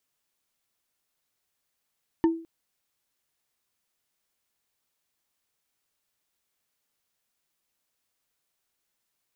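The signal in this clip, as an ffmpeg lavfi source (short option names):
-f lavfi -i "aevalsrc='0.178*pow(10,-3*t/0.41)*sin(2*PI*329*t)+0.0631*pow(10,-3*t/0.121)*sin(2*PI*907.1*t)+0.0224*pow(10,-3*t/0.054)*sin(2*PI*1777.9*t)+0.00794*pow(10,-3*t/0.03)*sin(2*PI*2939*t)+0.00282*pow(10,-3*t/0.018)*sin(2*PI*4388.9*t)':d=0.21:s=44100"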